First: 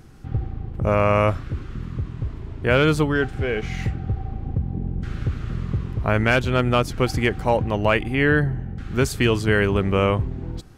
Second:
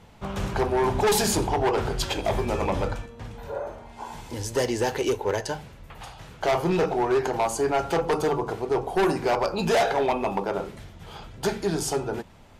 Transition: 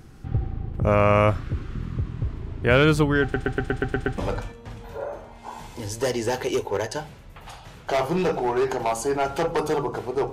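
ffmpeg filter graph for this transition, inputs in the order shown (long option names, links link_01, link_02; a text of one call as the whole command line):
ffmpeg -i cue0.wav -i cue1.wav -filter_complex "[0:a]apad=whole_dur=10.32,atrim=end=10.32,asplit=8[link_01][link_02][link_03][link_04][link_05][link_06][link_07][link_08];[link_01]atrim=end=3.342[link_09];[link_02]atrim=start=3.218:end=3.342[link_10];[link_03]atrim=start=3.218:end=3.342[link_11];[link_04]atrim=start=3.218:end=3.342[link_12];[link_05]atrim=start=3.218:end=3.342[link_13];[link_06]atrim=start=3.218:end=3.342[link_14];[link_07]atrim=start=3.218:end=3.342[link_15];[link_08]atrim=start=3.218:end=3.342[link_16];[1:a]atrim=start=2.718:end=8.86[link_17];[link_09][link_10]acrossfade=duration=0.004:curve1=hsin:curve2=hsin[link_18];[link_18][link_11]acrossfade=duration=0.004:curve1=hsin:curve2=hsin[link_19];[link_19][link_12]acrossfade=duration=0.004:curve1=hsin:curve2=hsin[link_20];[link_20][link_13]acrossfade=duration=0.004:curve1=hsin:curve2=hsin[link_21];[link_21][link_14]acrossfade=duration=0.004:curve1=hsin:curve2=hsin[link_22];[link_22][link_15]acrossfade=duration=0.004:curve1=hsin:curve2=hsin[link_23];[link_23][link_16]acrossfade=duration=0.004:curve1=hsin:curve2=hsin[link_24];[link_24][link_17]acrossfade=duration=0.004:curve1=hsin:curve2=hsin" out.wav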